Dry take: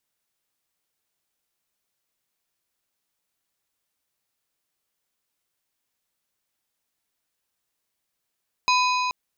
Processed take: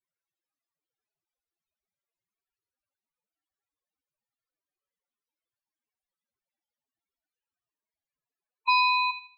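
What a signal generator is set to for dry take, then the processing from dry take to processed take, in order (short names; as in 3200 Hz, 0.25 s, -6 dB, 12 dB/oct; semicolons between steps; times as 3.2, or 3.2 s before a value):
metal hit plate, length 0.43 s, lowest mode 1000 Hz, modes 5, decay 3.93 s, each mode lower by 3.5 dB, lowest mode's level -18 dB
high shelf 3900 Hz -3.5 dB; loudest bins only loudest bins 8; on a send: thin delay 80 ms, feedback 32%, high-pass 1900 Hz, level -9.5 dB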